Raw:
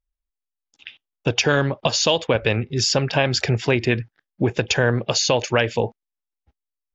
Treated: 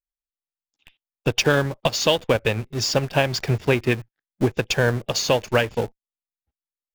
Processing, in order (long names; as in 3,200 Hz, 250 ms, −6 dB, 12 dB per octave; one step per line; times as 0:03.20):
in parallel at −5 dB: comparator with hysteresis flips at −29 dBFS
on the sum: expander for the loud parts 2.5 to 1, over −25 dBFS